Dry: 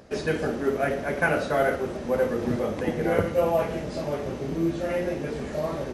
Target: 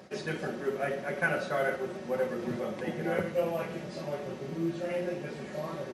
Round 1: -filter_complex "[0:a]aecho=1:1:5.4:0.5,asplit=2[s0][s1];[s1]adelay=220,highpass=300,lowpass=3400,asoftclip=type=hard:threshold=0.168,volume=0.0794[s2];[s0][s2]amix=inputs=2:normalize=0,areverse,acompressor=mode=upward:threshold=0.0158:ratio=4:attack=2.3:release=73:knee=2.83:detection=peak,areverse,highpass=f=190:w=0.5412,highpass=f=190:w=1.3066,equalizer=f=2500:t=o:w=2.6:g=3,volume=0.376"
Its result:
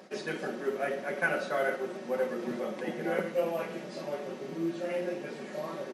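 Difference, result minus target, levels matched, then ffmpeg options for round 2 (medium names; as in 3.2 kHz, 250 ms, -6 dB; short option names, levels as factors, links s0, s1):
125 Hz band -6.5 dB
-filter_complex "[0:a]aecho=1:1:5.4:0.5,asplit=2[s0][s1];[s1]adelay=220,highpass=300,lowpass=3400,asoftclip=type=hard:threshold=0.168,volume=0.0794[s2];[s0][s2]amix=inputs=2:normalize=0,areverse,acompressor=mode=upward:threshold=0.0158:ratio=4:attack=2.3:release=73:knee=2.83:detection=peak,areverse,highpass=f=93:w=0.5412,highpass=f=93:w=1.3066,equalizer=f=2500:t=o:w=2.6:g=3,volume=0.376"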